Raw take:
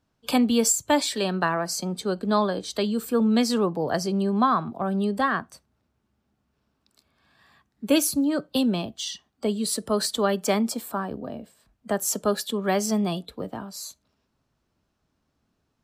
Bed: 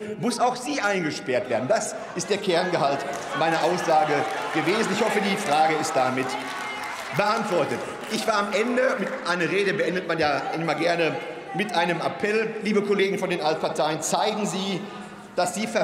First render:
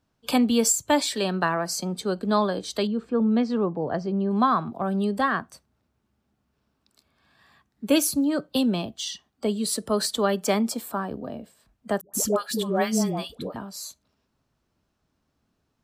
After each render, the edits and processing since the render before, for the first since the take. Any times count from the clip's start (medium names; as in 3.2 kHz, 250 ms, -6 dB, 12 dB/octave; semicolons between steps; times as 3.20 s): 2.87–4.31 s: tape spacing loss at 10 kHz 33 dB; 12.01–13.56 s: phase dispersion highs, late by 126 ms, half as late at 630 Hz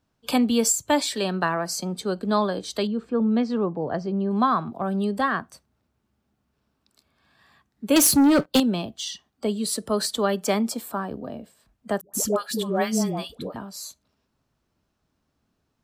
7.96–8.60 s: waveshaping leveller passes 3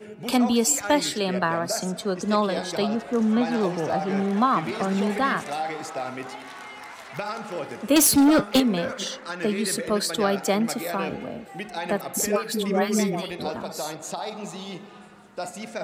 add bed -9 dB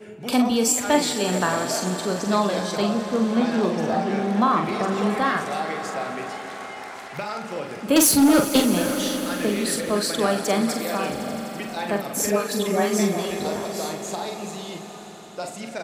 doubling 44 ms -6 dB; echo with a slow build-up 84 ms, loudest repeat 5, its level -17 dB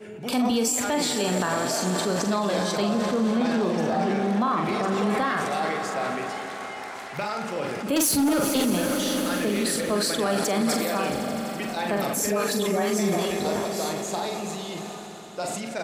peak limiter -16 dBFS, peak gain reduction 9 dB; decay stretcher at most 21 dB/s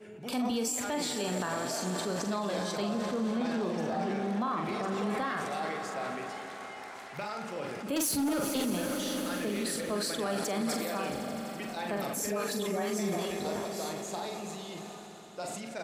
trim -8 dB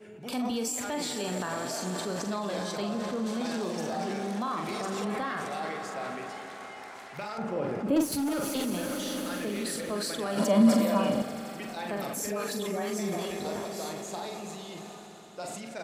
3.26–5.05 s: tone controls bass -2 dB, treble +10 dB; 7.38–8.12 s: tilt shelf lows +8.5 dB, about 1.5 kHz; 10.37–11.22 s: small resonant body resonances 220/580/990/2900 Hz, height 14 dB